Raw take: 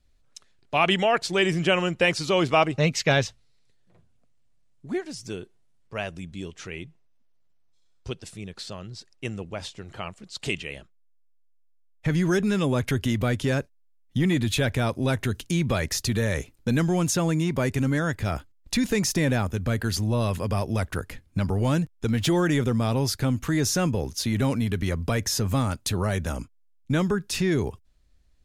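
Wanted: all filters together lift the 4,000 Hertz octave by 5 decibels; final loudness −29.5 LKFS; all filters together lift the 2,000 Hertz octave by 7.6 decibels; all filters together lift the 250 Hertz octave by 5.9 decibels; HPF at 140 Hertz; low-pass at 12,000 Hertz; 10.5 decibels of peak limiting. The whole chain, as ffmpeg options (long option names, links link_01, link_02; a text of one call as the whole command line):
ffmpeg -i in.wav -af "highpass=140,lowpass=12000,equalizer=frequency=250:width_type=o:gain=8.5,equalizer=frequency=2000:width_type=o:gain=8.5,equalizer=frequency=4000:width_type=o:gain=3.5,volume=-6dB,alimiter=limit=-17.5dB:level=0:latency=1" out.wav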